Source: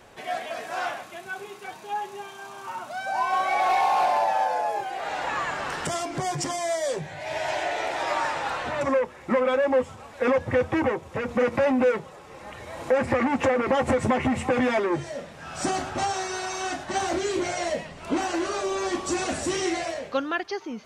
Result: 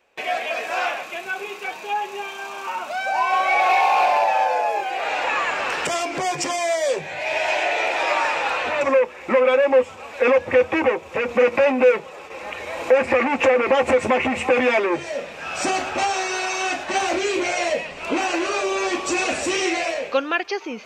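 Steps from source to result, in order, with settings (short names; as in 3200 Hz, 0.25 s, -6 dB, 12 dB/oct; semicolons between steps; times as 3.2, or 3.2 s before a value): thirty-one-band EQ 125 Hz -10 dB, 500 Hz +4 dB, 2500 Hz +11 dB, 10000 Hz -8 dB; gate with hold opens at -35 dBFS; in parallel at -2.5 dB: compressor, threshold -33 dBFS, peak gain reduction 18 dB; on the sum: tone controls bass -9 dB, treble 0 dB; gain +2.5 dB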